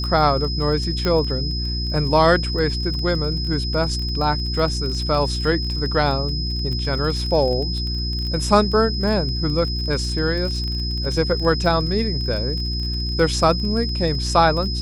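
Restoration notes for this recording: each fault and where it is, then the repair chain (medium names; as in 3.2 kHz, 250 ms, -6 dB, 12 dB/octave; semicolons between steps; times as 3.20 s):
crackle 29 per s -27 dBFS
hum 60 Hz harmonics 6 -25 dBFS
whine 5.1 kHz -27 dBFS
1.05 s: pop -10 dBFS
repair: de-click; band-stop 5.1 kHz, Q 30; de-hum 60 Hz, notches 6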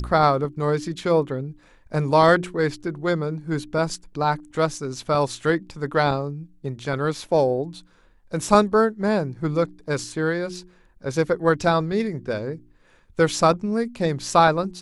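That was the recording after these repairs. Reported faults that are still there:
nothing left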